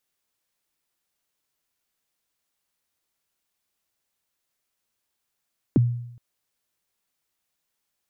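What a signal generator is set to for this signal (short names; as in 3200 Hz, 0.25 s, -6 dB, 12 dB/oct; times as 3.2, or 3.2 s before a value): kick drum length 0.42 s, from 370 Hz, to 120 Hz, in 21 ms, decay 0.76 s, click off, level -12 dB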